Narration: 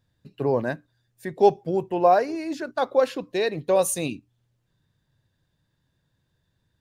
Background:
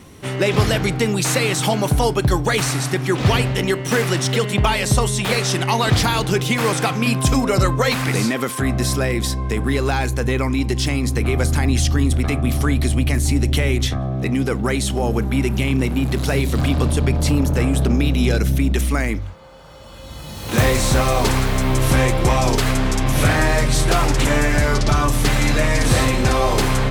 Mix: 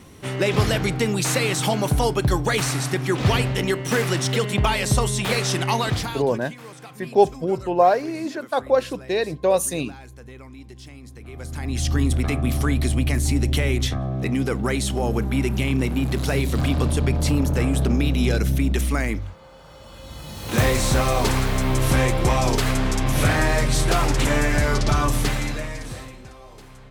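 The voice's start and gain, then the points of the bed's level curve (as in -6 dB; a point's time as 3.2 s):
5.75 s, +1.5 dB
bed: 5.75 s -3 dB
6.53 s -22 dB
11.22 s -22 dB
11.94 s -3 dB
25.17 s -3 dB
26.35 s -27 dB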